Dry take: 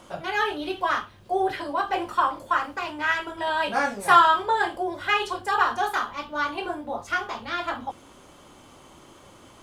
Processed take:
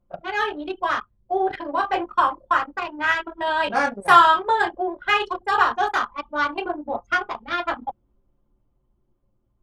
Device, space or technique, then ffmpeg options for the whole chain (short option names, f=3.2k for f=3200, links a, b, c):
voice memo with heavy noise removal: -filter_complex "[0:a]asettb=1/sr,asplit=3[a][b][c];[a]atrim=end=1.474[d];[b]atrim=start=1.47:end=1.96,asetpts=PTS-STARTPTS,afade=t=in:d=0.004:c=qsin,afade=t=out:st=0.486:d=0.004:c=qsin,asplit=2[e][f];[f]adelay=36,volume=-9dB[g];[e][g]amix=inputs=2:normalize=0,atrim=end_sample=21609[h];[c]atrim=start=1.956[i];[d][h]acrossfade=d=0.004:c1=hsin:c2=qsin[j];[j][i]acrossfade=d=0.004:c1=qsin:c2=hsin,anlmdn=39.8,dynaudnorm=f=290:g=13:m=4.5dB,volume=1dB"